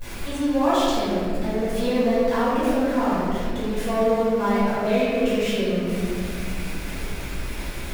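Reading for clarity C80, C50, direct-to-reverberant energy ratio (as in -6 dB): -1.5 dB, -3.5 dB, -12.5 dB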